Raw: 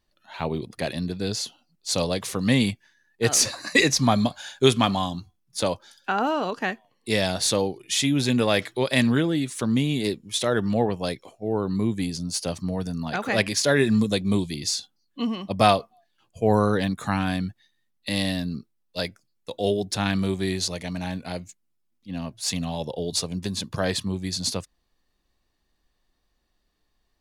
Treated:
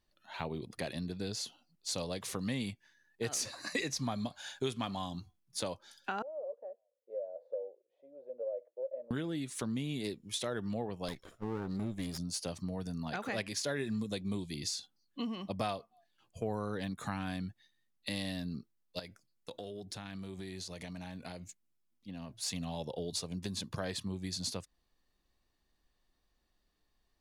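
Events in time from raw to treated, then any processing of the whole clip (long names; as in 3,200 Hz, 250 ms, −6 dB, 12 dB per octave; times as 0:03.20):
0:06.22–0:09.11: flat-topped band-pass 550 Hz, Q 5.4
0:11.08–0:12.18: lower of the sound and its delayed copy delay 0.57 ms
0:18.99–0:22.30: downward compressor 16 to 1, threshold −34 dBFS
whole clip: downward compressor 3 to 1, threshold −31 dBFS; level −5 dB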